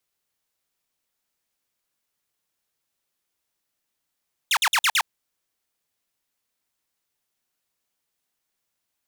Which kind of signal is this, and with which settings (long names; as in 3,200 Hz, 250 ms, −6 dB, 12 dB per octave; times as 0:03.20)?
repeated falling chirps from 3,900 Hz, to 760 Hz, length 0.06 s saw, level −14.5 dB, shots 5, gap 0.05 s